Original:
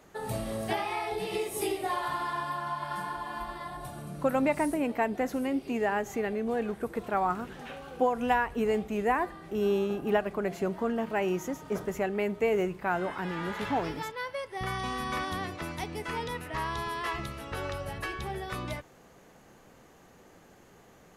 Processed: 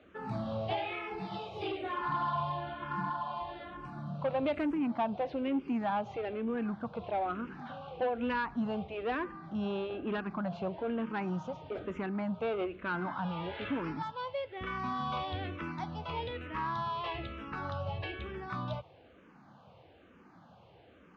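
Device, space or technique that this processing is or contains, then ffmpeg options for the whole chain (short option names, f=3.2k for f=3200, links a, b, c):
barber-pole phaser into a guitar amplifier: -filter_complex "[0:a]asplit=2[a][b];[b]afreqshift=-1.1[c];[a][c]amix=inputs=2:normalize=1,asoftclip=type=tanh:threshold=-27dB,highpass=80,equalizer=f=89:t=q:w=4:g=6,equalizer=f=410:t=q:w=4:g=-7,equalizer=f=1.9k:t=q:w=4:g=-9,lowpass=f=3.6k:w=0.5412,lowpass=f=3.6k:w=1.3066,asettb=1/sr,asplit=3[d][e][f];[d]atrim=end=1.984[g];[e]atrim=start=1.98:end=3.1,asetpts=PTS-STARTPTS,afade=t=in:d=0.004:c=qsin,afade=t=out:st=1.116:d=0.004:c=qsin,lowshelf=f=240:g=9.5[h];[f]atrim=start=3.096[i];[g][h]acrossfade=d=0.004:c1=hsin:c2=qsin[j];[j][i]acrossfade=d=0.004:c1=qsin:c2=hsin,volume=2.5dB"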